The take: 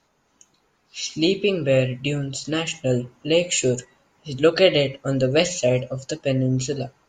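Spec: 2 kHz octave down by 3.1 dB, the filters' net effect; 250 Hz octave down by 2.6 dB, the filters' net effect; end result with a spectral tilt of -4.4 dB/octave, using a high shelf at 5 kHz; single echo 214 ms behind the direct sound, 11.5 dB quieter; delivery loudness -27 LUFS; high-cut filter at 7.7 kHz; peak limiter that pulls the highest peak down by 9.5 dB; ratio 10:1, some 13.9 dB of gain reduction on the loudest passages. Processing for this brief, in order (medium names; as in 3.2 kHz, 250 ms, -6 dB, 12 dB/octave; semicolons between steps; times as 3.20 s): low-pass 7.7 kHz; peaking EQ 250 Hz -3.5 dB; peaking EQ 2 kHz -6.5 dB; treble shelf 5 kHz +7.5 dB; compression 10:1, threshold -26 dBFS; peak limiter -24.5 dBFS; delay 214 ms -11.5 dB; trim +6.5 dB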